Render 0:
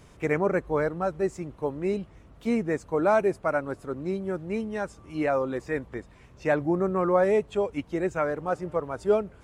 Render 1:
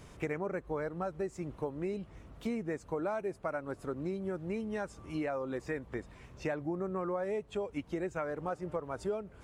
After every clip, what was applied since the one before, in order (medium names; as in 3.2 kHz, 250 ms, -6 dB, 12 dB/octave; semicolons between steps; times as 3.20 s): compression 6:1, threshold -33 dBFS, peak gain reduction 15 dB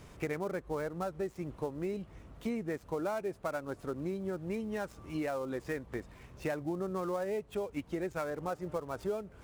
dead-time distortion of 0.059 ms